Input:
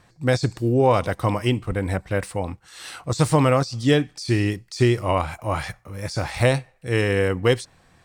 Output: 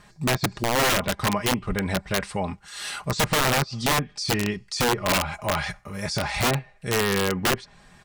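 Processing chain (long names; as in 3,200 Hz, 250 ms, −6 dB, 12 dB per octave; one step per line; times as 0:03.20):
treble cut that deepens with the level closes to 1,300 Hz, closed at −13.5 dBFS
parametric band 370 Hz −3.5 dB 1.7 octaves
comb filter 4.9 ms, depth 63%
in parallel at −1.5 dB: downward compressor 16 to 1, threshold −30 dBFS, peak gain reduction 17.5 dB
on the sum: wrap-around overflow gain 14 dB
level −1.5 dB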